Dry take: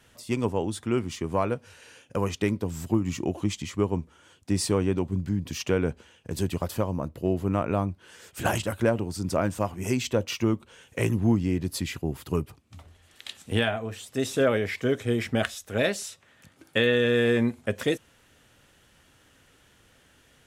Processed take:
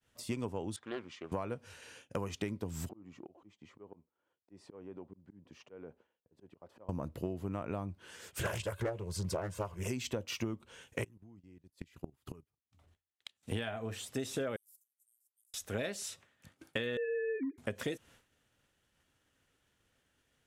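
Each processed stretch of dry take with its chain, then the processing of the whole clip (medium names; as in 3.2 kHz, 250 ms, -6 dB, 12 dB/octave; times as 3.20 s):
0.76–1.32 s: high-pass 1.2 kHz 6 dB/octave + tape spacing loss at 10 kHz 27 dB + loudspeaker Doppler distortion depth 0.28 ms
2.89–6.89 s: slow attack 248 ms + band-pass filter 580 Hz, Q 0.79 + compression 2:1, threshold -53 dBFS
8.39–9.88 s: comb 1.9 ms, depth 86% + loudspeaker Doppler distortion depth 0.43 ms
11.04–13.43 s: level held to a coarse grid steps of 14 dB + inverted gate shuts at -27 dBFS, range -24 dB
14.56–15.54 s: inverse Chebyshev high-pass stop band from 2 kHz, stop band 80 dB + compressor with a negative ratio -58 dBFS
16.97–17.58 s: formants replaced by sine waves + distance through air 220 m
whole clip: expander -49 dBFS; compression 10:1, threshold -31 dBFS; trim -2 dB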